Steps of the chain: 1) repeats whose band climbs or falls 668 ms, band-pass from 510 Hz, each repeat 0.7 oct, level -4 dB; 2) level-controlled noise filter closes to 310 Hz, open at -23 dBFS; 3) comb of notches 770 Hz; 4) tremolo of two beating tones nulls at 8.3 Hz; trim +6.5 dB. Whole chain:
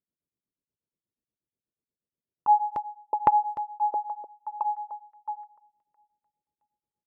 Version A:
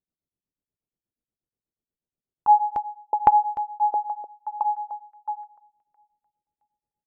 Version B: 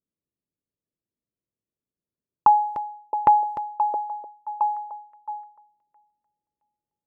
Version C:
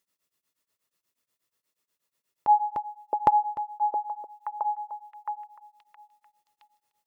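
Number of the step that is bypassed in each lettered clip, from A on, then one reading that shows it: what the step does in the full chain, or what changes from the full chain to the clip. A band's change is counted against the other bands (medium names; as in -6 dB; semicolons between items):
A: 3, crest factor change -2.0 dB; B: 4, momentary loudness spread change +1 LU; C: 2, momentary loudness spread change -1 LU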